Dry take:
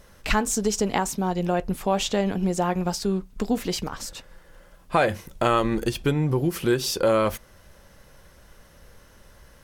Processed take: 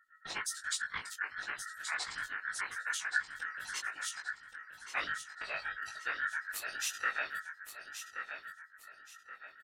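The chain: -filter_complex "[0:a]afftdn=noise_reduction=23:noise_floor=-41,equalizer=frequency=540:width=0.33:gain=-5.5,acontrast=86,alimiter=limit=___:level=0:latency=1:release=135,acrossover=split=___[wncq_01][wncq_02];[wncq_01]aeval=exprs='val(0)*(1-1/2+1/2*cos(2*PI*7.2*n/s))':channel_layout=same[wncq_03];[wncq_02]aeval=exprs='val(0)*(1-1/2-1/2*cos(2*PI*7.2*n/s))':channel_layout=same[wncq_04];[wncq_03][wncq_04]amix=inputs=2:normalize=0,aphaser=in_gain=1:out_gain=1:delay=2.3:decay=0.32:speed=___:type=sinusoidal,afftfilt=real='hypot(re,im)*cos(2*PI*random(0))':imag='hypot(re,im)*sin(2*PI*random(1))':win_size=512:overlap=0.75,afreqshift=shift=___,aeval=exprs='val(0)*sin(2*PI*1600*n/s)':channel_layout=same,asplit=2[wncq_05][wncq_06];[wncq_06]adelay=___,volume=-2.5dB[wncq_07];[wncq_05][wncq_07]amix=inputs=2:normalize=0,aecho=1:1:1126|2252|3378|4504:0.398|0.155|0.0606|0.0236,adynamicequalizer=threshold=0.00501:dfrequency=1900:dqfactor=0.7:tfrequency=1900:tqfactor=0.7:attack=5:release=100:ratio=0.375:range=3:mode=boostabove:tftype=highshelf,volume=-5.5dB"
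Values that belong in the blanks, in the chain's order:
-16dB, 2300, 0.99, -310, 20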